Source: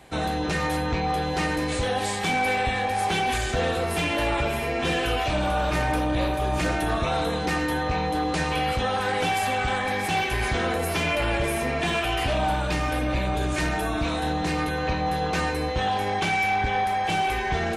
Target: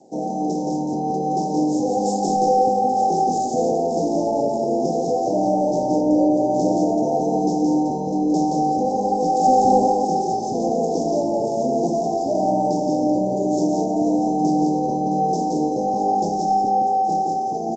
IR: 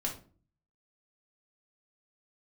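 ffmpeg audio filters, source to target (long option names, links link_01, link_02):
-filter_complex "[0:a]dynaudnorm=framelen=130:gausssize=17:maxgain=3dB,asplit=3[link_01][link_02][link_03];[link_01]afade=type=out:start_time=14.98:duration=0.02[link_04];[link_02]adynamicequalizer=threshold=0.00501:dfrequency=1100:dqfactor=7.8:tfrequency=1100:tqfactor=7.8:attack=5:release=100:ratio=0.375:range=3:mode=cutabove:tftype=bell,afade=type=in:start_time=14.98:duration=0.02,afade=type=out:start_time=15.65:duration=0.02[link_05];[link_03]afade=type=in:start_time=15.65:duration=0.02[link_06];[link_04][link_05][link_06]amix=inputs=3:normalize=0,highpass=frequency=220:width=0.5412,highpass=frequency=220:width=1.3066,asoftclip=type=tanh:threshold=-10.5dB,asplit=3[link_07][link_08][link_09];[link_07]afade=type=out:start_time=1.97:duration=0.02[link_10];[link_08]asplit=2[link_11][link_12];[link_12]adelay=14,volume=-3dB[link_13];[link_11][link_13]amix=inputs=2:normalize=0,afade=type=in:start_time=1.97:duration=0.02,afade=type=out:start_time=2.61:duration=0.02[link_14];[link_09]afade=type=in:start_time=2.61:duration=0.02[link_15];[link_10][link_14][link_15]amix=inputs=3:normalize=0,asettb=1/sr,asplit=3[link_16][link_17][link_18];[link_16]atrim=end=9.444[link_19];[link_17]atrim=start=9.44:end=9.88,asetpts=PTS-STARTPTS,afade=type=in:duration=0.004:curve=qsin,afade=type=out:start_time=0.436:duration=0.004:curve=qsin,acontrast=57[link_20];[link_18]atrim=start=9.876[link_21];[link_19][link_20]acrossfade=duration=0.004:curve1=hsin:curve2=qsin[link_22];[link_22][link_21]acrossfade=duration=0.004:curve1=qsin:curve2=hsin,asuperstop=centerf=2100:order=20:qfactor=0.5,lowshelf=frequency=380:gain=9.5,aecho=1:1:172:0.708" -ar 16000 -c:a g722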